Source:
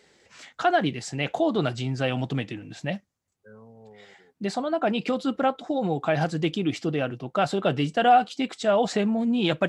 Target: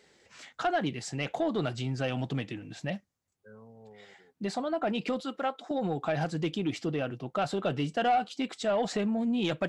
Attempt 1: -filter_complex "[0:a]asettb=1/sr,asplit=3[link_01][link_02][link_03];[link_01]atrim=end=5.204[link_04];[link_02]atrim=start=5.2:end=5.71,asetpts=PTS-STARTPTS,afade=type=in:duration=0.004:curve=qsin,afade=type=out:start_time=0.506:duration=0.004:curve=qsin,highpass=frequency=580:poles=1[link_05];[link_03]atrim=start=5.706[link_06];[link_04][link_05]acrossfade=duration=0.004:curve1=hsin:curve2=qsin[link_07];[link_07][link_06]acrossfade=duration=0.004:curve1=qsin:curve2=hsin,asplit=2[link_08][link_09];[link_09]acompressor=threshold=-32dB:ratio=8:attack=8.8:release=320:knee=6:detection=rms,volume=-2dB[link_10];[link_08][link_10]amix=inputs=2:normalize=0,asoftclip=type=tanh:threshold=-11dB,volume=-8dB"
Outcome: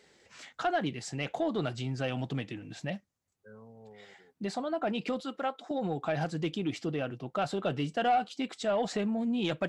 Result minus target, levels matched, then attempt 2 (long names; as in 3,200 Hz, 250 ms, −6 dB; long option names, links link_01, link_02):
downward compressor: peak gain reduction +8.5 dB
-filter_complex "[0:a]asettb=1/sr,asplit=3[link_01][link_02][link_03];[link_01]atrim=end=5.204[link_04];[link_02]atrim=start=5.2:end=5.71,asetpts=PTS-STARTPTS,afade=type=in:duration=0.004:curve=qsin,afade=type=out:start_time=0.506:duration=0.004:curve=qsin,highpass=frequency=580:poles=1[link_05];[link_03]atrim=start=5.706[link_06];[link_04][link_05]acrossfade=duration=0.004:curve1=hsin:curve2=qsin[link_07];[link_07][link_06]acrossfade=duration=0.004:curve1=qsin:curve2=hsin,asplit=2[link_08][link_09];[link_09]acompressor=threshold=-22.5dB:ratio=8:attack=8.8:release=320:knee=6:detection=rms,volume=-2dB[link_10];[link_08][link_10]amix=inputs=2:normalize=0,asoftclip=type=tanh:threshold=-11dB,volume=-8dB"